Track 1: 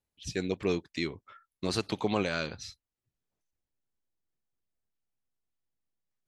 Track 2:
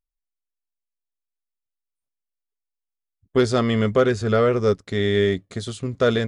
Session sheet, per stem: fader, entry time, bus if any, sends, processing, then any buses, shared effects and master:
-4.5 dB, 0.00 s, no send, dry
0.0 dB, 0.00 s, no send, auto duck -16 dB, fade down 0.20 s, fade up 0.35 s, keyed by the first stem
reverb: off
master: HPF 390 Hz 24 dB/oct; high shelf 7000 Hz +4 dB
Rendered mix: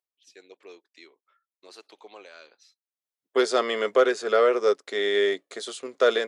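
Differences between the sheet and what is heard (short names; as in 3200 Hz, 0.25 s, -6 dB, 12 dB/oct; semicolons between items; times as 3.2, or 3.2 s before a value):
stem 1 -4.5 dB -> -14.5 dB; master: missing high shelf 7000 Hz +4 dB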